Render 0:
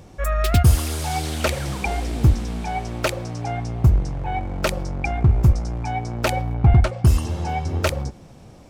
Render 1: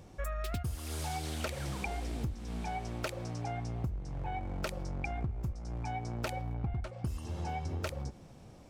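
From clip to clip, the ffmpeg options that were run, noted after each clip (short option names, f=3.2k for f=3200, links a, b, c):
-af "acompressor=threshold=-24dB:ratio=12,volume=-8.5dB"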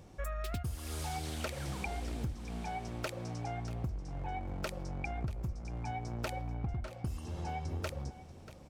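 -af "aecho=1:1:637:0.168,volume=-1.5dB"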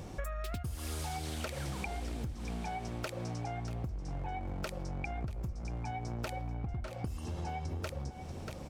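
-af "acompressor=threshold=-47dB:ratio=4,volume=10dB"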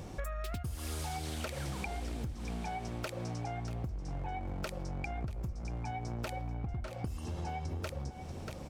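-af "aeval=exprs='clip(val(0),-1,0.0355)':c=same"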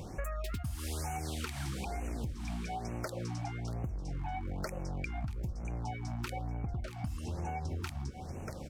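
-af "afftfilt=real='re*(1-between(b*sr/1024,420*pow(4200/420,0.5+0.5*sin(2*PI*1.1*pts/sr))/1.41,420*pow(4200/420,0.5+0.5*sin(2*PI*1.1*pts/sr))*1.41))':imag='im*(1-between(b*sr/1024,420*pow(4200/420,0.5+0.5*sin(2*PI*1.1*pts/sr))/1.41,420*pow(4200/420,0.5+0.5*sin(2*PI*1.1*pts/sr))*1.41))':win_size=1024:overlap=0.75,volume=1dB"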